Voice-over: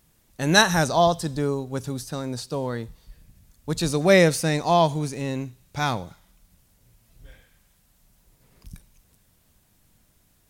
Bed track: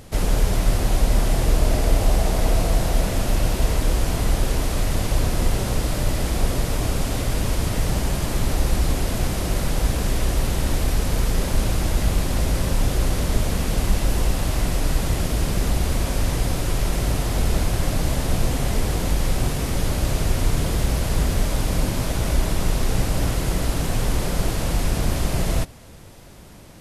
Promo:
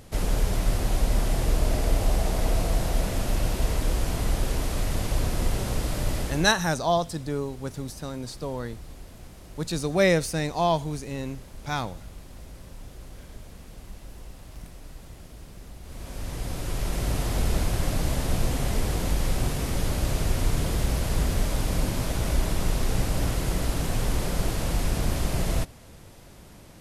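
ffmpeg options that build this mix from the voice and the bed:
-filter_complex "[0:a]adelay=5900,volume=0.596[s0];[1:a]volume=4.73,afade=t=out:st=6.18:d=0.37:silence=0.133352,afade=t=in:st=15.82:d=1.41:silence=0.11885[s1];[s0][s1]amix=inputs=2:normalize=0"

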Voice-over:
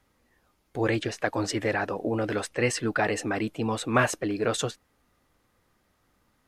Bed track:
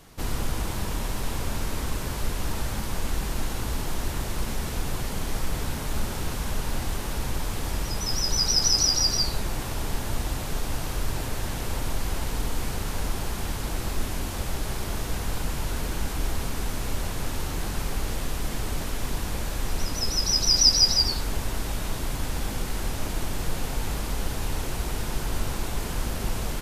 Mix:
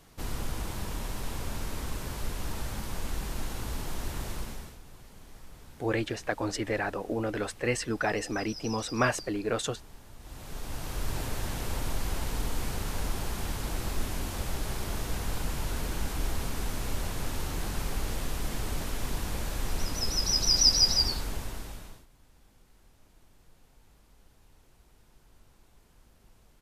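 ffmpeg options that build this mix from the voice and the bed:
-filter_complex "[0:a]adelay=5050,volume=0.668[s0];[1:a]volume=3.98,afade=t=out:st=4.3:d=0.48:silence=0.16788,afade=t=in:st=10.19:d=0.99:silence=0.125893,afade=t=out:st=21.04:d=1.02:silence=0.0398107[s1];[s0][s1]amix=inputs=2:normalize=0"

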